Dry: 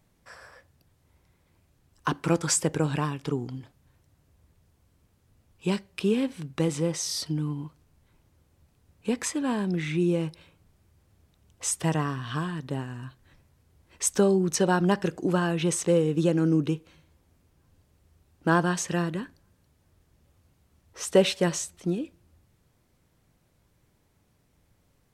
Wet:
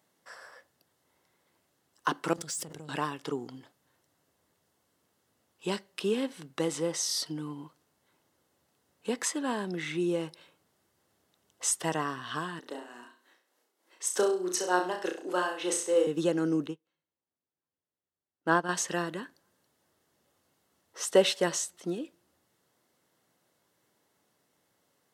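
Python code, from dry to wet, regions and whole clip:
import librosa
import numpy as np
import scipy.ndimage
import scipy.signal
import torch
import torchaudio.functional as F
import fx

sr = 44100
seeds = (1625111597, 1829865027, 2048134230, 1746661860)

y = fx.chain(x, sr, fx.tone_stack(knobs='10-0-1'),
    fx.leveller(passes=2),
    fx.env_flatten(amount_pct=100), at=(2.33, 2.89))
y = fx.chain(y, sr, fx.highpass(hz=270.0, slope=24),
    fx.tremolo_shape(shape='triangle', hz=3.3, depth_pct=70),
    fx.room_flutter(wall_m=5.7, rt60_s=0.4), at=(12.59, 16.07))
y = fx.chain(y, sr, fx.bass_treble(bass_db=2, treble_db=-5),
    fx.upward_expand(threshold_db=-35.0, expansion=2.5), at=(16.67, 18.69))
y = scipy.signal.sosfilt(scipy.signal.bessel(2, 380.0, 'highpass', norm='mag', fs=sr, output='sos'), y)
y = fx.notch(y, sr, hz=2400.0, q=8.2)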